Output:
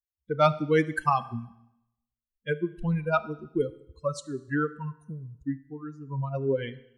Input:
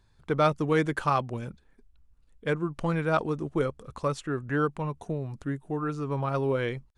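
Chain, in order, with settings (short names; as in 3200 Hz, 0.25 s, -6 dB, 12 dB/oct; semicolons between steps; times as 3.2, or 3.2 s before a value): per-bin expansion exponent 3; Schroeder reverb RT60 0.83 s, combs from 26 ms, DRR 15.5 dB; gain +5.5 dB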